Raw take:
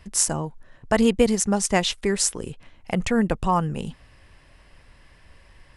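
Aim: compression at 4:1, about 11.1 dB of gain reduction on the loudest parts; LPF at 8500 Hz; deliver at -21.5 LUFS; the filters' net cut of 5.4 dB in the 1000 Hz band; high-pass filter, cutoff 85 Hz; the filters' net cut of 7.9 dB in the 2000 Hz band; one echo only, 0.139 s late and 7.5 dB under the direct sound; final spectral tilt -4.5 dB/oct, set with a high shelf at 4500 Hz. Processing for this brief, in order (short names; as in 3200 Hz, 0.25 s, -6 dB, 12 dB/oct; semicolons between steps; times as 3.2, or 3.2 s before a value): HPF 85 Hz; LPF 8500 Hz; bell 1000 Hz -5.5 dB; bell 2000 Hz -7.5 dB; high shelf 4500 Hz -3 dB; compressor 4:1, threshold -28 dBFS; echo 0.139 s -7.5 dB; gain +10.5 dB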